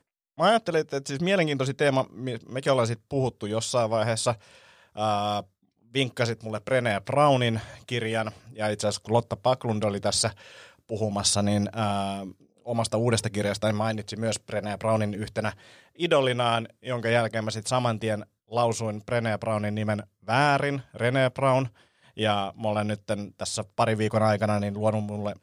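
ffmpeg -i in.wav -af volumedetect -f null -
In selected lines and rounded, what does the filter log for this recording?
mean_volume: -26.6 dB
max_volume: -9.3 dB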